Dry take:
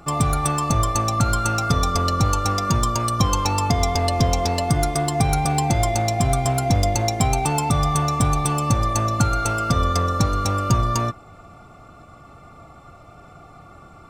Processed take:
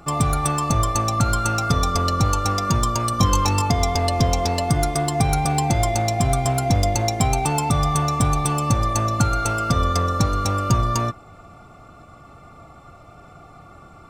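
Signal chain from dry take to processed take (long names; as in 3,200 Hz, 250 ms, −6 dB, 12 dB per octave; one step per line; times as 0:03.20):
0:03.11–0:03.62: double-tracking delay 21 ms −6 dB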